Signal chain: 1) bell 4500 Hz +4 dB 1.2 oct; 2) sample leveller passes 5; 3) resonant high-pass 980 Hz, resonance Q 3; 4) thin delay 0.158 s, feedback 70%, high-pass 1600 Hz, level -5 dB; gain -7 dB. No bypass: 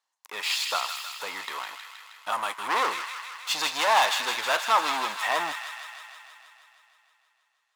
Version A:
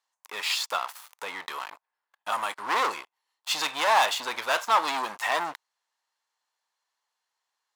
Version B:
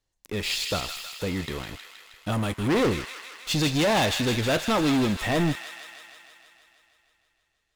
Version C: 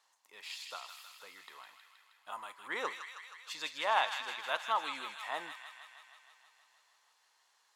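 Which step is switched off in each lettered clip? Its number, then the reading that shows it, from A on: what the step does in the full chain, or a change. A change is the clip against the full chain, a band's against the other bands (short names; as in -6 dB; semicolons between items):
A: 4, 8 kHz band -1.5 dB; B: 3, 250 Hz band +22.0 dB; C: 2, crest factor change +4.0 dB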